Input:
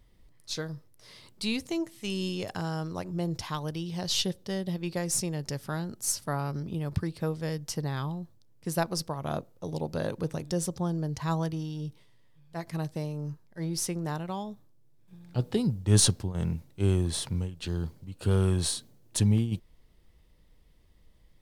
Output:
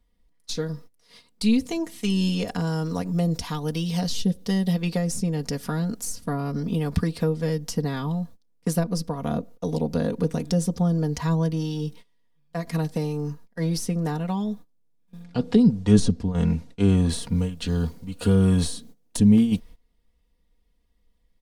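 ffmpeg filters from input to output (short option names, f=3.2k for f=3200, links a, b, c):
-filter_complex "[0:a]asettb=1/sr,asplit=3[a][b][c];[a]atrim=end=2.674[d];[b]atrim=start=2.67:end=4.73,asetpts=PTS-STARTPTS,afade=t=in:d=0.004:c=qsin,afade=t=out:st=2.056:d=0.004:c=qsin,highshelf=f=5.3k:g=5.5[e];[c]atrim=start=4.726[f];[d][e]acrossfade=d=0.004:c1=hsin:c2=qsin[g];[g][f]acrossfade=d=0.004:c1=qsin:c2=hsin,asplit=3[h][i][j];[h]afade=t=out:st=15.23:d=0.02[k];[i]lowpass=7.6k,afade=t=in:st=15.23:d=0.02,afade=t=out:st=17.08:d=0.02[l];[j]afade=t=in:st=17.08:d=0.02[m];[k][l][m]amix=inputs=3:normalize=0,agate=range=-18dB:threshold=-49dB:ratio=16:detection=peak,aecho=1:1:4.2:0.8,acrossover=split=410[n][o];[o]acompressor=threshold=-39dB:ratio=10[p];[n][p]amix=inputs=2:normalize=0,volume=8dB"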